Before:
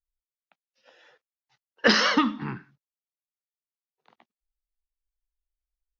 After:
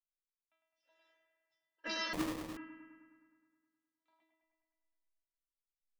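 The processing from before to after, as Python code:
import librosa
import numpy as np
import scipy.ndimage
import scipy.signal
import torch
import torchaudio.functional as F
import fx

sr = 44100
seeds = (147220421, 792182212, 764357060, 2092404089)

y = fx.stiff_resonator(x, sr, f0_hz=320.0, decay_s=0.57, stiffness=0.002)
y = fx.echo_bbd(y, sr, ms=104, stages=2048, feedback_pct=67, wet_db=-5.0)
y = fx.sample_hold(y, sr, seeds[0], rate_hz=1500.0, jitter_pct=20, at=(2.13, 2.57))
y = y * 10.0 ** (1.5 / 20.0)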